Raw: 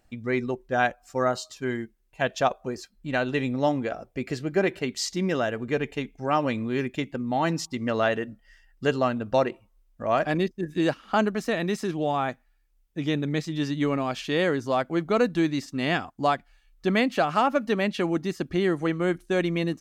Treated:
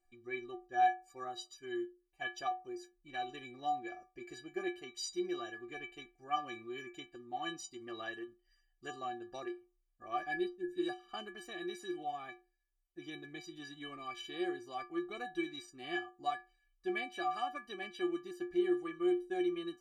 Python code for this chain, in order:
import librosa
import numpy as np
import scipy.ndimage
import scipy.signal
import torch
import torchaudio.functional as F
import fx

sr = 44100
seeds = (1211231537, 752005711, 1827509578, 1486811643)

y = fx.dynamic_eq(x, sr, hz=3300.0, q=1.3, threshold_db=-46.0, ratio=4.0, max_db=4)
y = fx.stiff_resonator(y, sr, f0_hz=350.0, decay_s=0.33, stiffness=0.03)
y = F.gain(torch.from_numpy(y), 1.0).numpy()